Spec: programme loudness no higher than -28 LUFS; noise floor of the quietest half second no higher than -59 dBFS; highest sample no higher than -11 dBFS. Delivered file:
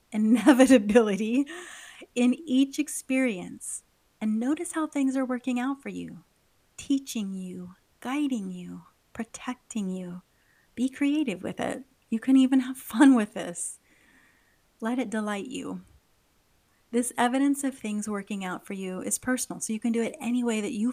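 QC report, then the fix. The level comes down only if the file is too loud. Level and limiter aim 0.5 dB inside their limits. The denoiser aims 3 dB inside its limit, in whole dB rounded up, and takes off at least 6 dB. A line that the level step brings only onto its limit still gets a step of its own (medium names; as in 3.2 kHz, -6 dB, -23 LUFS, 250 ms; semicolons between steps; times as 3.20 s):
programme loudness -26.5 LUFS: fail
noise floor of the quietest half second -67 dBFS: pass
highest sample -5.5 dBFS: fail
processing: trim -2 dB; peak limiter -11.5 dBFS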